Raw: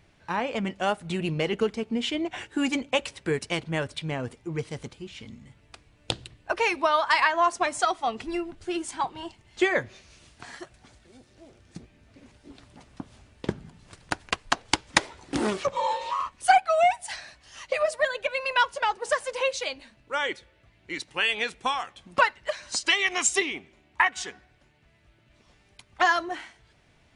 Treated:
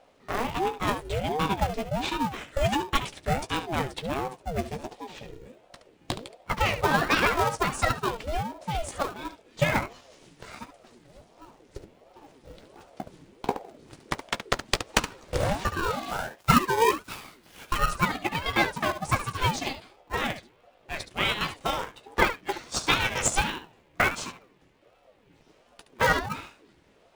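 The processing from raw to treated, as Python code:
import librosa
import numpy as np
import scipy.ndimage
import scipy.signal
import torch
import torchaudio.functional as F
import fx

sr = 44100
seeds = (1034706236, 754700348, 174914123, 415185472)

p1 = fx.dead_time(x, sr, dead_ms=0.066, at=(16.08, 17.77))
p2 = fx.room_early_taps(p1, sr, ms=(15, 71), db=(-9.5, -11.0))
p3 = fx.sample_hold(p2, sr, seeds[0], rate_hz=1400.0, jitter_pct=0)
p4 = p2 + (p3 * librosa.db_to_amplitude(-5.0))
y = fx.ring_lfo(p4, sr, carrier_hz=430.0, swing_pct=50, hz=1.4)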